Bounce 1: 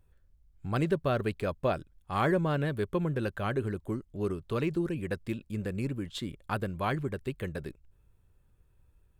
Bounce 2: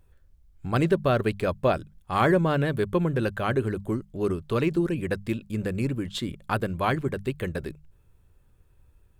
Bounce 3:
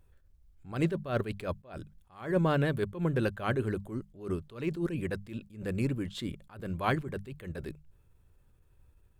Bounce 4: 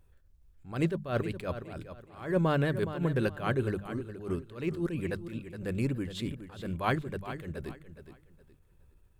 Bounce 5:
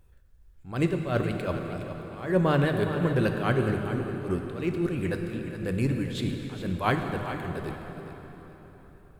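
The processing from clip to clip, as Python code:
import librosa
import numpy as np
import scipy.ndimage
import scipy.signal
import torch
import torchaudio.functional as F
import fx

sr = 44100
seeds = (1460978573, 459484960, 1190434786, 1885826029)

y1 = fx.hum_notches(x, sr, base_hz=50, count=4)
y1 = y1 * 10.0 ** (6.0 / 20.0)
y2 = fx.attack_slew(y1, sr, db_per_s=140.0)
y2 = y2 * 10.0 ** (-3.0 / 20.0)
y3 = fx.echo_feedback(y2, sr, ms=417, feedback_pct=27, wet_db=-11.5)
y4 = fx.rev_plate(y3, sr, seeds[0], rt60_s=4.3, hf_ratio=0.75, predelay_ms=0, drr_db=4.5)
y4 = y4 * 10.0 ** (3.5 / 20.0)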